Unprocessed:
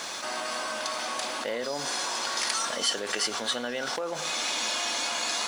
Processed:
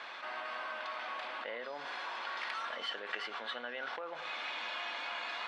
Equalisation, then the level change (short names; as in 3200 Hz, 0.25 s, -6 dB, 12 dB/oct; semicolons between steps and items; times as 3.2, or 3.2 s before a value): band-pass 2800 Hz, Q 0.58; air absorption 500 m; 0.0 dB